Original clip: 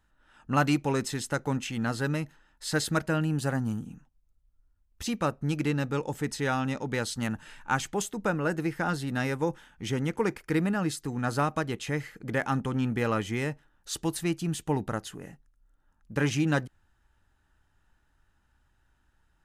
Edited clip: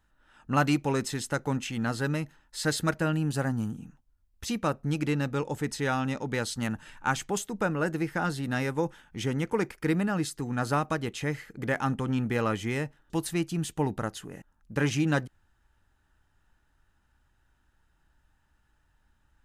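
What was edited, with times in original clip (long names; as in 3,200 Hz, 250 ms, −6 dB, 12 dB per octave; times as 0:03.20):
compress silence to 45%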